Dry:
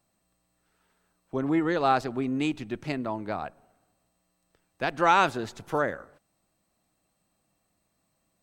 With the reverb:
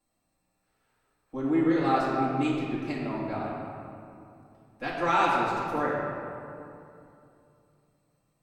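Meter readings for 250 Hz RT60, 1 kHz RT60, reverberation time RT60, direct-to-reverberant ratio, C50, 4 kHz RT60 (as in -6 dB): 3.2 s, 2.6 s, 2.7 s, -9.0 dB, -1.0 dB, 1.4 s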